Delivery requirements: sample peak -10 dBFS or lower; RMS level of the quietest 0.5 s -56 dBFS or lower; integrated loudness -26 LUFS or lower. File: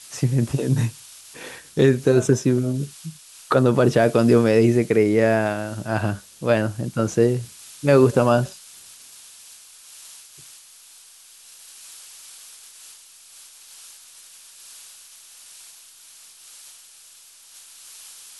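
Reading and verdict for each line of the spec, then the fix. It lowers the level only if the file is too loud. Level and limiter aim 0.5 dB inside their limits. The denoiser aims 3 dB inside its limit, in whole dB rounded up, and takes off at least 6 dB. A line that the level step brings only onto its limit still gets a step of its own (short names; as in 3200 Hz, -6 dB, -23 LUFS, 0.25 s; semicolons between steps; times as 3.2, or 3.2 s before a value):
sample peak -4.5 dBFS: fail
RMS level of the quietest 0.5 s -48 dBFS: fail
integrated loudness -20.0 LUFS: fail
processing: denoiser 6 dB, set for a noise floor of -48 dBFS; gain -6.5 dB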